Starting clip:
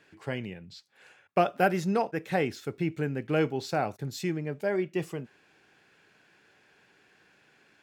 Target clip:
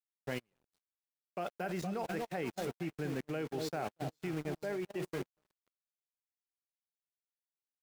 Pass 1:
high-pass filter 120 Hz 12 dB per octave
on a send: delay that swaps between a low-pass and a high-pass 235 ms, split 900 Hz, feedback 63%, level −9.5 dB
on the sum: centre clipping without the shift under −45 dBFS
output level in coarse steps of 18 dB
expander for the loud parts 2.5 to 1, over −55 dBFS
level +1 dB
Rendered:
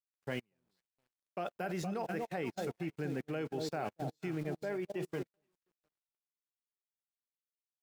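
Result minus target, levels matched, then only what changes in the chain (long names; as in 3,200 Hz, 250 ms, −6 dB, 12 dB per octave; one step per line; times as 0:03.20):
centre clipping without the shift: distortion −8 dB
change: centre clipping without the shift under −37.5 dBFS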